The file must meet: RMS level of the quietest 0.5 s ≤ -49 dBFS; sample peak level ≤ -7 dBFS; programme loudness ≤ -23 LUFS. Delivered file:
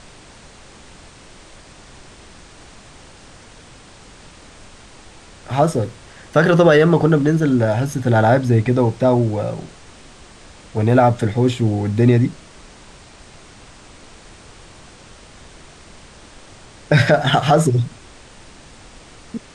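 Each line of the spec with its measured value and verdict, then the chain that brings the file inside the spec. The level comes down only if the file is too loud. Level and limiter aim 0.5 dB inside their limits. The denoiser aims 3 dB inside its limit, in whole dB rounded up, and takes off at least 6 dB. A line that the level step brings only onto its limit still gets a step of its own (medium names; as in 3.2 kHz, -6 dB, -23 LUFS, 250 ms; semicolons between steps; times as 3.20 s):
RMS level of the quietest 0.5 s -43 dBFS: fail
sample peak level -3.0 dBFS: fail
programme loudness -16.5 LUFS: fail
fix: trim -7 dB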